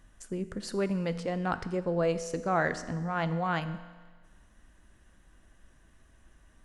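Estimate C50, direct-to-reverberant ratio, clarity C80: 13.0 dB, 11.0 dB, 14.5 dB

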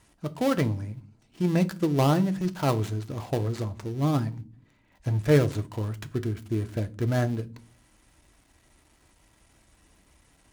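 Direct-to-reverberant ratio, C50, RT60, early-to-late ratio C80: 8.5 dB, 20.5 dB, no single decay rate, 27.0 dB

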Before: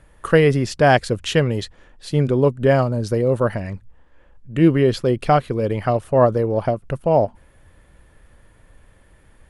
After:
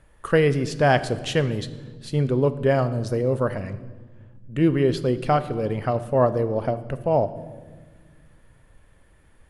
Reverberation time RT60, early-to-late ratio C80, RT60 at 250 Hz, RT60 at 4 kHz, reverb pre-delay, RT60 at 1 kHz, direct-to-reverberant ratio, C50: 1.4 s, 16.0 dB, 2.5 s, 1.1 s, 5 ms, 1.2 s, 12.0 dB, 14.5 dB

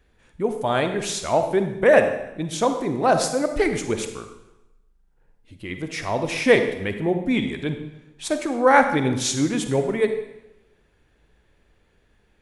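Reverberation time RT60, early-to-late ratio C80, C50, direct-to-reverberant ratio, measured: 0.95 s, 10.0 dB, 8.0 dB, 7.0 dB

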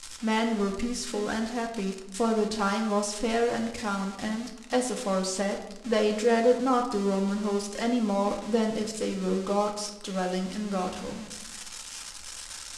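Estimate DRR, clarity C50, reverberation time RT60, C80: 2.0 dB, 8.0 dB, 0.95 s, 10.5 dB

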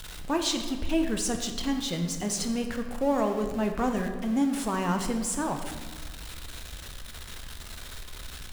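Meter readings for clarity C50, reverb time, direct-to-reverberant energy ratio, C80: 6.5 dB, 1.5 s, 4.5 dB, 8.5 dB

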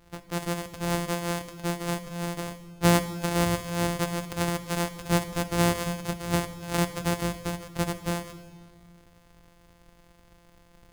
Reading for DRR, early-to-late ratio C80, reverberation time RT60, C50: 9.5 dB, 13.0 dB, 1.6 s, 11.5 dB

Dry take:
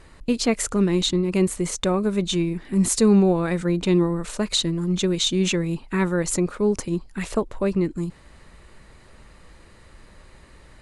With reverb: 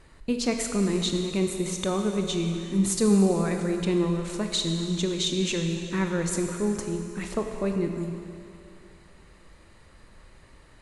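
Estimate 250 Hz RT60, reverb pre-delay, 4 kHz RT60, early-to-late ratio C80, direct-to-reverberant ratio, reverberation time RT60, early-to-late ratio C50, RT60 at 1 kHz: 2.5 s, 21 ms, 2.6 s, 5.5 dB, 4.0 dB, 2.6 s, 5.0 dB, 2.7 s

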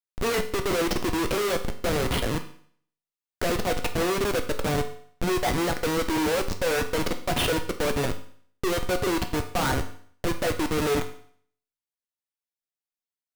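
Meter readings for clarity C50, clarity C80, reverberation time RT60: 11.5 dB, 15.0 dB, 0.55 s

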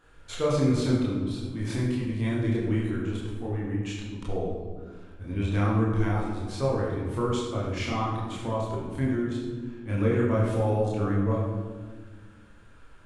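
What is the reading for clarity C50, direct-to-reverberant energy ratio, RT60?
1.0 dB, -6.0 dB, 1.5 s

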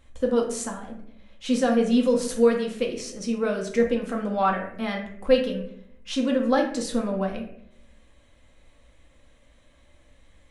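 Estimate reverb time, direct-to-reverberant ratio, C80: 0.70 s, 0.5 dB, 10.5 dB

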